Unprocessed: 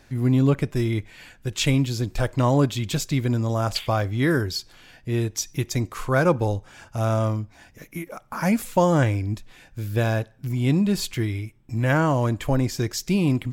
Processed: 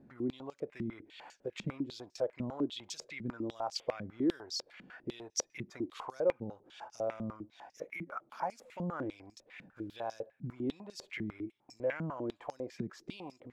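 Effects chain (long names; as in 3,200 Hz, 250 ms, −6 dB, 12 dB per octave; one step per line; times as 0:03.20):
parametric band 500 Hz +7 dB 2.5 octaves
downward compressor 2.5 to 1, threshold −36 dBFS, peak gain reduction 18 dB
band-pass on a step sequencer 10 Hz 200–5,600 Hz
level +5 dB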